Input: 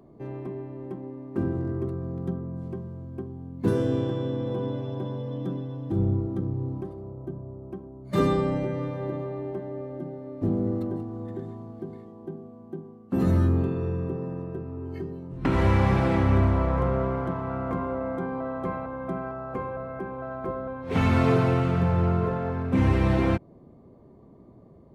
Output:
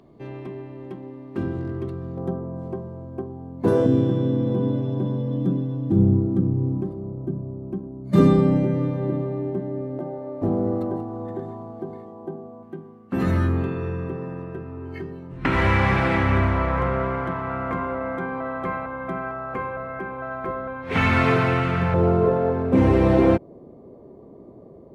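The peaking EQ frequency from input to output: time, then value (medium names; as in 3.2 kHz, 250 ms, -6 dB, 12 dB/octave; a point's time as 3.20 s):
peaking EQ +11 dB 1.8 oct
3.3 kHz
from 2.17 s 690 Hz
from 3.86 s 200 Hz
from 9.99 s 790 Hz
from 12.63 s 2 kHz
from 21.94 s 460 Hz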